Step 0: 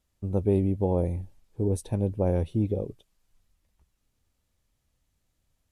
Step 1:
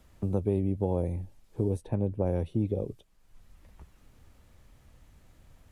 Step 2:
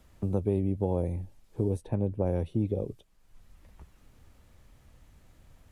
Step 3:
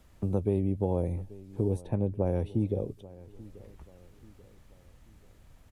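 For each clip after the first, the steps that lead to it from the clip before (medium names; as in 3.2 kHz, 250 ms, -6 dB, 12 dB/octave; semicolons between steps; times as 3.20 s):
three bands compressed up and down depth 70%; trim -3 dB
no audible change
feedback delay 836 ms, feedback 42%, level -20 dB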